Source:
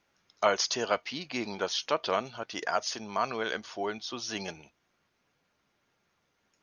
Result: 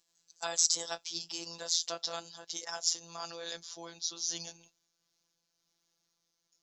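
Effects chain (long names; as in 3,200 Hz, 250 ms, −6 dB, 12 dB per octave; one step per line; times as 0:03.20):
pitch glide at a constant tempo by +3 semitones ending unshifted
high shelf with overshoot 3,300 Hz +13 dB, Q 1.5
phases set to zero 168 Hz
level −8 dB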